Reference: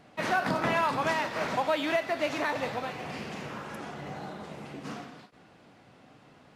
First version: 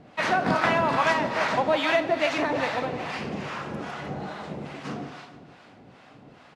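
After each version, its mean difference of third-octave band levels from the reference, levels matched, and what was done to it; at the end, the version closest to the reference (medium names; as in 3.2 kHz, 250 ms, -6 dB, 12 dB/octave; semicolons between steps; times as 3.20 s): 3.5 dB: distance through air 52 m; on a send: feedback delay 152 ms, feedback 56%, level -9.5 dB; on the sum: harmonic tremolo 2.4 Hz, depth 70%, crossover 680 Hz; trim +8.5 dB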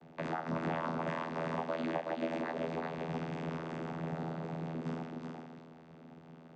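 6.5 dB: compression 2.5:1, threshold -36 dBFS, peak gain reduction 9.5 dB; thinning echo 372 ms, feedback 18%, high-pass 170 Hz, level -3.5 dB; vocoder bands 16, saw 81.8 Hz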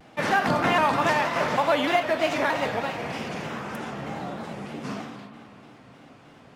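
2.0 dB: band-stop 4.2 kHz, Q 19; spring tank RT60 3.2 s, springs 51 ms, chirp 35 ms, DRR 8.5 dB; vibrato with a chosen wave square 3.2 Hz, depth 100 cents; trim +5 dB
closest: third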